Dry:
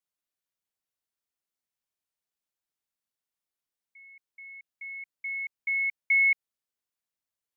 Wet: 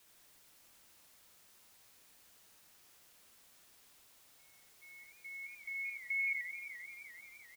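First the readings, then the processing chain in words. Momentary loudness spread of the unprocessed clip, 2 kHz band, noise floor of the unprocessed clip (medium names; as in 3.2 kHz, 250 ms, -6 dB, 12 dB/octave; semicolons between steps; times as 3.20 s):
24 LU, -12.0 dB, under -85 dBFS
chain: peaking EQ 2.2 kHz -14.5 dB; expander -51 dBFS; added noise white -66 dBFS; on a send: delay 83 ms -4.5 dB; on the sum: modulated delay 174 ms, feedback 75%, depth 194 cents, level -11 dB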